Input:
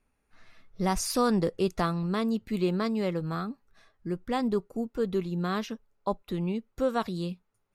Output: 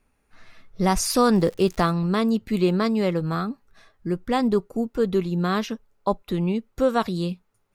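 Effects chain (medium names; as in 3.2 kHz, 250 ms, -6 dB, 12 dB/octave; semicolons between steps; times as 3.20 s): 1.32–1.91 s: crackle 180 per s -40 dBFS; trim +6.5 dB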